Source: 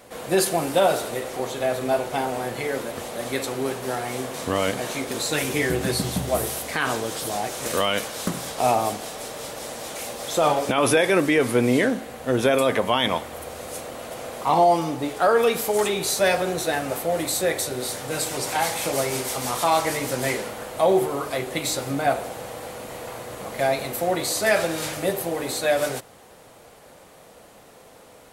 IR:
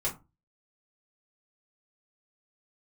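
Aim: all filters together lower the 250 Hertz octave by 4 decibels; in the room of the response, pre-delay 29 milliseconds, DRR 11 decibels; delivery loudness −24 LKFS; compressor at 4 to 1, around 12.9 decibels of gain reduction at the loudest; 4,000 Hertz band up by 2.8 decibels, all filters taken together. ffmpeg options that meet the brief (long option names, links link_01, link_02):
-filter_complex "[0:a]equalizer=frequency=250:width_type=o:gain=-5.5,equalizer=frequency=4000:width_type=o:gain=3.5,acompressor=threshold=-31dB:ratio=4,asplit=2[link_01][link_02];[1:a]atrim=start_sample=2205,adelay=29[link_03];[link_02][link_03]afir=irnorm=-1:irlink=0,volume=-16.5dB[link_04];[link_01][link_04]amix=inputs=2:normalize=0,volume=8.5dB"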